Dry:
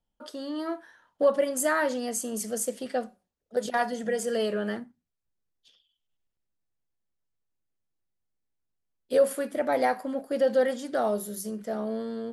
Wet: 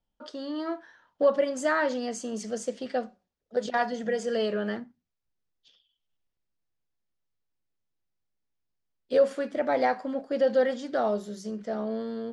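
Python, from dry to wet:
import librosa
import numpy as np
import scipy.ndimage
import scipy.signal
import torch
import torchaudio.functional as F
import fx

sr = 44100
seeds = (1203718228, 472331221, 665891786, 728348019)

y = scipy.signal.sosfilt(scipy.signal.butter(4, 6200.0, 'lowpass', fs=sr, output='sos'), x)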